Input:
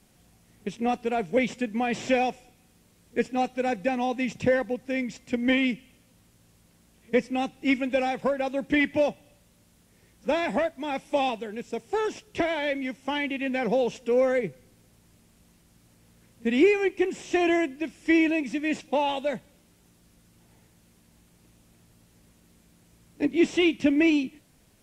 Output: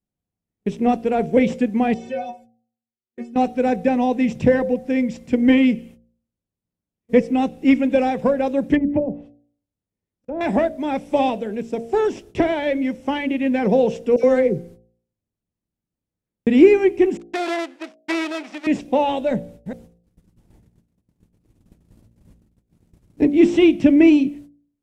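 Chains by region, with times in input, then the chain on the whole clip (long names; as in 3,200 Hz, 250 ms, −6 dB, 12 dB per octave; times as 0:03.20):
0:01.94–0:03.36: low-shelf EQ 100 Hz −10.5 dB + stiff-string resonator 110 Hz, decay 0.51 s, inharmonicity 0.03
0:08.75–0:10.41: treble cut that deepens with the level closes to 340 Hz, closed at −19.5 dBFS + volume swells 206 ms
0:14.16–0:16.47: dynamic equaliser 5,100 Hz, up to +6 dB, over −55 dBFS, Q 1.4 + all-pass dispersion lows, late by 78 ms, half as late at 1,600 Hz
0:17.17–0:18.67: gap after every zero crossing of 0.21 ms + noise gate −51 dBFS, range −38 dB + band-pass filter 680–6,500 Hz
0:19.31–0:23.24: delay that plays each chunk backwards 211 ms, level −7.5 dB + low-shelf EQ 250 Hz +6.5 dB
whole clip: noise gate −51 dBFS, range −34 dB; tilt shelving filter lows +6 dB, about 820 Hz; hum removal 57.65 Hz, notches 13; level +5.5 dB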